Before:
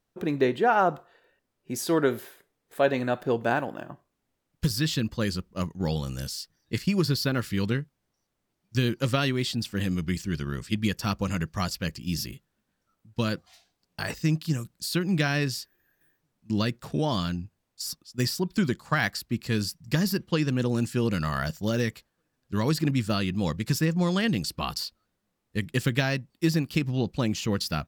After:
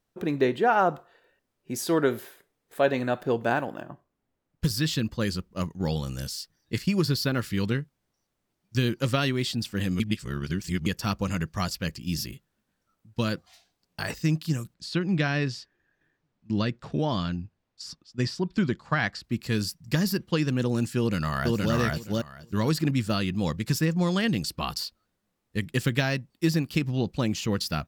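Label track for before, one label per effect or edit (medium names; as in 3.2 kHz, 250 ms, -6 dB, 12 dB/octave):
3.820000	5.510000	tape noise reduction on one side only decoder only
10.000000	10.860000	reverse
14.740000	19.240000	distance through air 110 m
20.980000	21.740000	echo throw 470 ms, feedback 15%, level -0.5 dB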